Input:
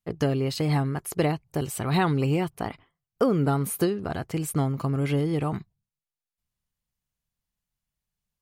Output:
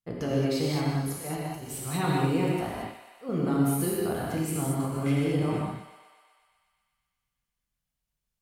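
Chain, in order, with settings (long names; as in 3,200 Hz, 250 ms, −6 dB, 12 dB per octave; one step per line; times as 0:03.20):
brickwall limiter −17 dBFS, peak gain reduction 7 dB
0:00.95–0:03.29: volume swells 158 ms
feedback echo with a high-pass in the loop 123 ms, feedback 74%, high-pass 520 Hz, level −12 dB
reverb whose tail is shaped and stops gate 250 ms flat, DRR −4.5 dB
level −6 dB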